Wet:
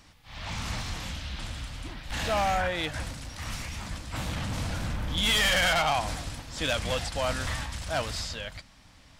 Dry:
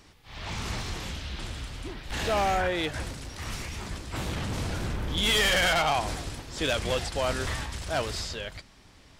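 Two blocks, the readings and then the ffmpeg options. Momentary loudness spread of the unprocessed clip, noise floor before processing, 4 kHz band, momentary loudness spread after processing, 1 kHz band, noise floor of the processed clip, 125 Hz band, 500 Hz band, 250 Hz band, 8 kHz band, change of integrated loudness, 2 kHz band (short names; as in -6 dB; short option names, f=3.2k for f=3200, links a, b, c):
15 LU, -55 dBFS, 0.0 dB, 15 LU, -0.5 dB, -55 dBFS, 0.0 dB, -2.5 dB, -2.0 dB, 0.0 dB, -0.5 dB, 0.0 dB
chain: -af "equalizer=f=390:t=o:w=0.32:g=-15"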